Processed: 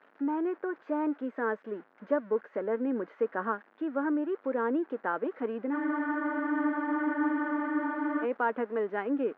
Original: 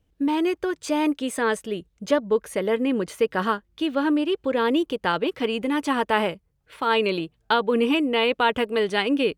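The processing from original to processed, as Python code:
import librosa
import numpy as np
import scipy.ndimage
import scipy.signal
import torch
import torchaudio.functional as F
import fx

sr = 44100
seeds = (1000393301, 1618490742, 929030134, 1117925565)

y = x + 0.5 * 10.0 ** (-19.0 / 20.0) * np.diff(np.sign(x), prepend=np.sign(x[:1]))
y = scipy.signal.sosfilt(scipy.signal.ellip(3, 1.0, 70, [230.0, 1600.0], 'bandpass', fs=sr, output='sos'), y)
y = fx.spec_freeze(y, sr, seeds[0], at_s=5.75, hold_s=2.47)
y = y * 10.0 ** (-7.0 / 20.0)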